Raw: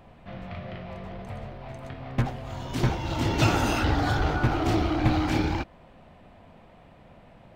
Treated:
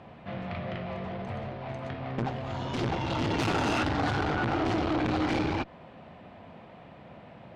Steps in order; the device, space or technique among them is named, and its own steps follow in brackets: valve radio (band-pass 100–4600 Hz; valve stage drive 27 dB, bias 0.4; transformer saturation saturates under 270 Hz); trim +5.5 dB

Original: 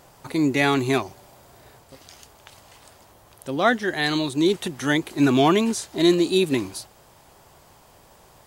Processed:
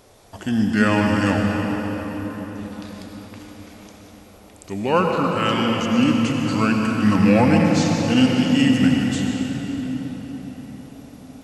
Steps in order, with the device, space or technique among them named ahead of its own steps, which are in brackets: slowed and reverbed (tape speed -26%; reverberation RT60 5.3 s, pre-delay 75 ms, DRR 0 dB)

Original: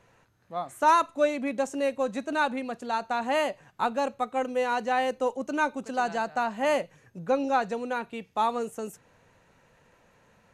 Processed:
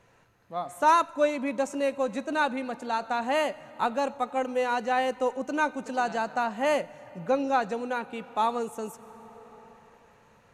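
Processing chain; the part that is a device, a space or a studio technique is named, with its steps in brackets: compressed reverb return (on a send at -5 dB: reverberation RT60 2.8 s, pre-delay 89 ms + compression 10:1, threshold -39 dBFS, peak gain reduction 20 dB)

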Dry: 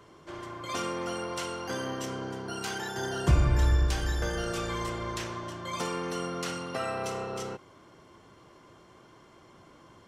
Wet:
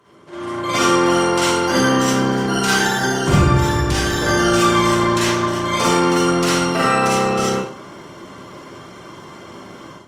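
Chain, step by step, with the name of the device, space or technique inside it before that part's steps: far-field microphone of a smart speaker (reverberation RT60 0.45 s, pre-delay 39 ms, DRR -5.5 dB; high-pass 130 Hz 12 dB/octave; level rider gain up to 12 dB; Opus 32 kbps 48 kHz)

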